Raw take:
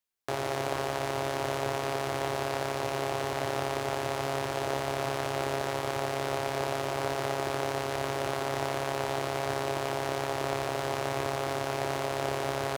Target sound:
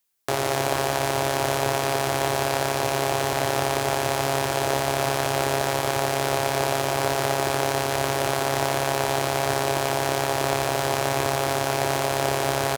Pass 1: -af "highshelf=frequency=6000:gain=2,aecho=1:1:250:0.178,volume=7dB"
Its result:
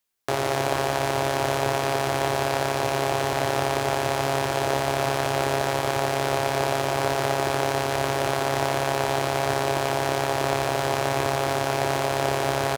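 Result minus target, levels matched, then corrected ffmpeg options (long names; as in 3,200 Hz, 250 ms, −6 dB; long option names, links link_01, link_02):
8,000 Hz band −3.5 dB
-af "highshelf=frequency=6000:gain=8.5,aecho=1:1:250:0.178,volume=7dB"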